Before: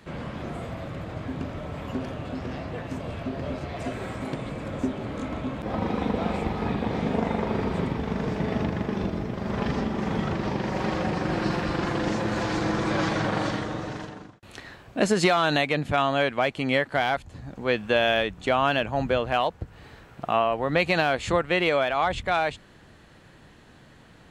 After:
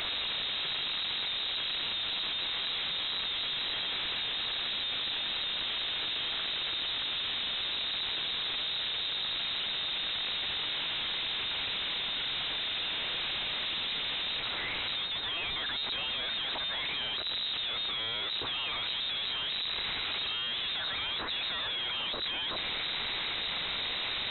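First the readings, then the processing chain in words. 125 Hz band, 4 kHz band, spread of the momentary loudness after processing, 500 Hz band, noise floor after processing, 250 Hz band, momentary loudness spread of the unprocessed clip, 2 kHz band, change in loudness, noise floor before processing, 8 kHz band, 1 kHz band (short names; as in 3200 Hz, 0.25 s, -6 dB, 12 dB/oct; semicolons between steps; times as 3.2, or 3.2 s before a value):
-22.0 dB, +8.5 dB, 1 LU, -21.0 dB, -35 dBFS, -23.5 dB, 12 LU, -6.0 dB, -4.5 dB, -52 dBFS, under -35 dB, -14.5 dB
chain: infinite clipping; HPF 47 Hz 24 dB/oct; overloaded stage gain 21 dB; inverted band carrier 3900 Hz; gain -6.5 dB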